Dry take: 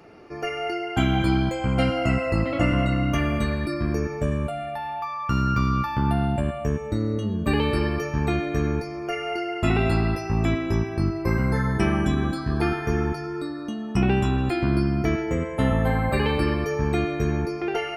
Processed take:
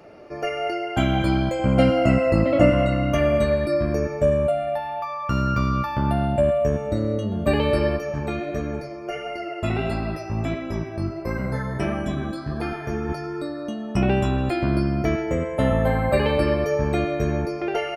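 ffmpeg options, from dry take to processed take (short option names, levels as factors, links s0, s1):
-filter_complex "[0:a]asettb=1/sr,asplit=3[s0][s1][s2];[s0]atrim=end=1.594[s3];[s1]atrim=start=1.59:end=2.7,asetpts=PTS-STARTPTS,afade=t=in:d=0.004:c=qsin,afade=t=out:st=1.106:d=0.004:c=qsin,equalizer=f=240:t=o:w=1.9:g=5.5[s4];[s2]atrim=start=2.696[s5];[s3][s4]acrossfade=d=0.004:c1=hsin:c2=qsin[s6];[s6][s5]acrossfade=d=0.004:c1=qsin:c2=hsin,asplit=2[s7][s8];[s8]afade=t=in:st=6.13:d=0.01,afade=t=out:st=6.57:d=0.01,aecho=0:1:590|1180|1770|2360|2950|3540|4130|4720|5310|5900|6490|7080:0.16788|0.134304|0.107443|0.0859548|0.0687638|0.0550111|0.0440088|0.0352071|0.0281657|0.0225325|0.018026|0.0144208[s9];[s7][s9]amix=inputs=2:normalize=0,asplit=3[s10][s11][s12];[s10]afade=t=out:st=7.96:d=0.02[s13];[s11]flanger=delay=3.7:depth=5.7:regen=52:speed=1.5:shape=sinusoidal,afade=t=in:st=7.96:d=0.02,afade=t=out:st=13.08:d=0.02[s14];[s12]afade=t=in:st=13.08:d=0.02[s15];[s13][s14][s15]amix=inputs=3:normalize=0,equalizer=f=590:t=o:w=0.23:g=14.5"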